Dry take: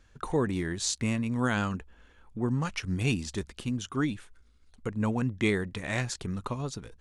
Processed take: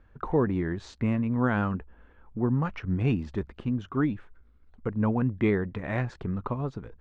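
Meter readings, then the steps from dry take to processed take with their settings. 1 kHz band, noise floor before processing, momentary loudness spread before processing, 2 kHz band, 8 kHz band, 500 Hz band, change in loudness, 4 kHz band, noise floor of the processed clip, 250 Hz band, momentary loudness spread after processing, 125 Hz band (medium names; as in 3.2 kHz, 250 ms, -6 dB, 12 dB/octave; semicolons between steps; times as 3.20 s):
+2.0 dB, -60 dBFS, 9 LU, -2.5 dB, under -20 dB, +3.0 dB, +2.0 dB, -12.5 dB, -59 dBFS, +3.0 dB, 8 LU, +3.0 dB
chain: low-pass 1.5 kHz 12 dB/octave; trim +3 dB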